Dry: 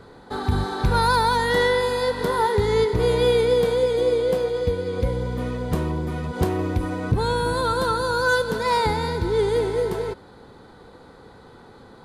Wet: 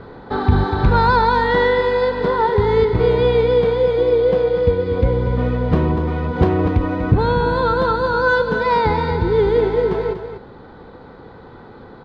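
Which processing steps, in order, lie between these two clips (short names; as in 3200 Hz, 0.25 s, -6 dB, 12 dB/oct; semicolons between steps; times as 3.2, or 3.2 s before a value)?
in parallel at +1 dB: vocal rider 2 s; on the sum: air absorption 280 m; echo 0.242 s -9 dB; gain -1 dB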